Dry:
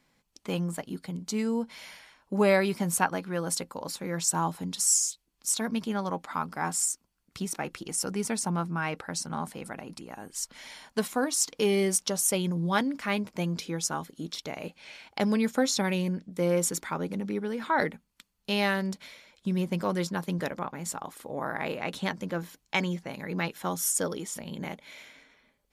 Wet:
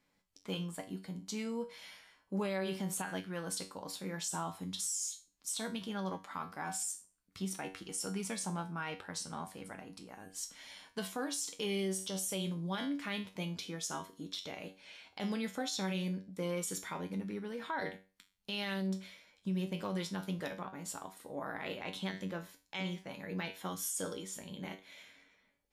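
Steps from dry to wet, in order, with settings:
tuned comb filter 95 Hz, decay 0.33 s, harmonics all, mix 80%
dynamic equaliser 3,300 Hz, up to +8 dB, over −60 dBFS, Q 2.6
brickwall limiter −28 dBFS, peak gain reduction 10.5 dB

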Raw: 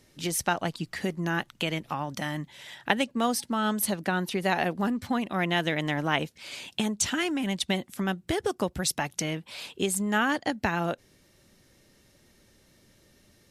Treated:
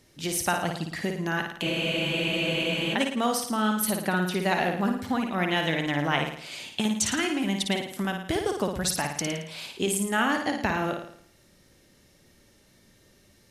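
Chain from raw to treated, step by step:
flutter between parallel walls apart 9.5 metres, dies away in 0.61 s
frozen spectrum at 0:01.65, 1.28 s

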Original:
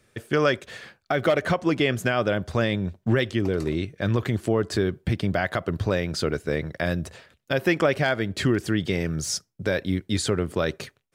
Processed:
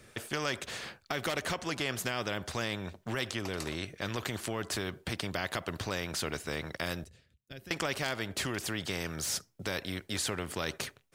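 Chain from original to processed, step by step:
0:07.04–0:07.71: guitar amp tone stack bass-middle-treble 10-0-1
every bin compressed towards the loudest bin 2 to 1
level −4 dB

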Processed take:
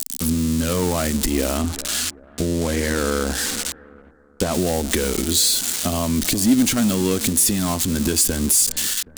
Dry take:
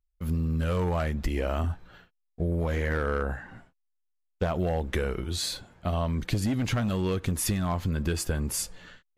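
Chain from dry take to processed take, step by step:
spike at every zero crossing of −21 dBFS
0:01.57–0:04.54: high-shelf EQ 12,000 Hz −10 dB
bucket-brigade delay 387 ms, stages 4,096, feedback 36%, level −20 dB
downward compressor, threshold −28 dBFS, peak gain reduction 8 dB
octave-band graphic EQ 125/250/4,000/8,000 Hz −10/+12/+4/+8 dB
level +8.5 dB

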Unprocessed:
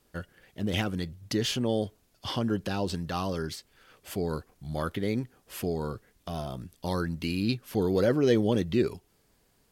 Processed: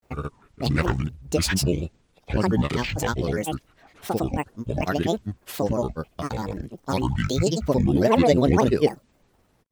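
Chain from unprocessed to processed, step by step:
granular cloud, pitch spread up and down by 12 semitones
one half of a high-frequency compander decoder only
level +7.5 dB

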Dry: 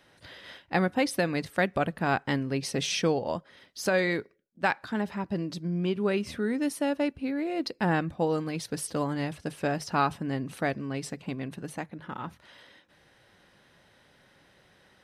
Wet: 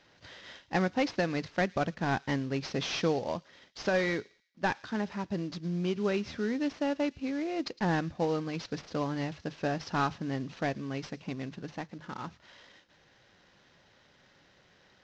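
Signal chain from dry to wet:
variable-slope delta modulation 32 kbit/s
on a send: delay with a high-pass on its return 110 ms, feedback 35%, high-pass 3,300 Hz, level −17 dB
on the sum: level −2.5 dB

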